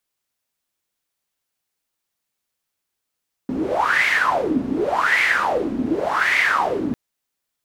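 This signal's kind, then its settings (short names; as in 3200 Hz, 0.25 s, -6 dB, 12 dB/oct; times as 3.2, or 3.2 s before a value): wind-like swept noise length 3.45 s, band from 250 Hz, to 2100 Hz, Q 8.5, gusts 3, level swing 5 dB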